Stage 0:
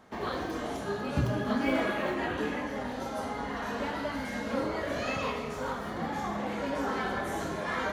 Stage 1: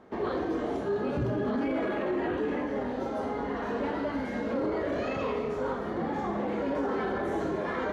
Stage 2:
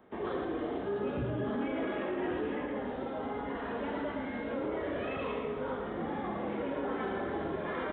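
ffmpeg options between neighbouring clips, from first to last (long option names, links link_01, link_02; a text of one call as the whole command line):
ffmpeg -i in.wav -af "equalizer=frequency=380:width_type=o:width=0.99:gain=9,alimiter=limit=-22dB:level=0:latency=1:release=11,aemphasis=mode=reproduction:type=75kf" out.wav
ffmpeg -i in.wav -filter_complex "[0:a]aecho=1:1:114:0.501,aresample=8000,aresample=44100,acrossover=split=350|810[link_01][link_02][link_03];[link_03]crystalizer=i=2:c=0[link_04];[link_01][link_02][link_04]amix=inputs=3:normalize=0,volume=-5.5dB" out.wav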